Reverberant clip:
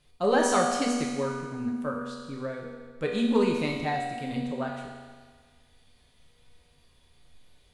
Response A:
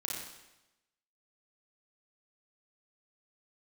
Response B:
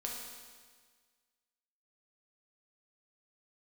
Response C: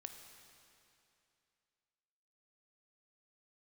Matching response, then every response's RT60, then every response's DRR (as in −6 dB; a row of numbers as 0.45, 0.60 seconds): B; 0.95, 1.6, 2.7 seconds; −3.5, −2.0, 5.0 decibels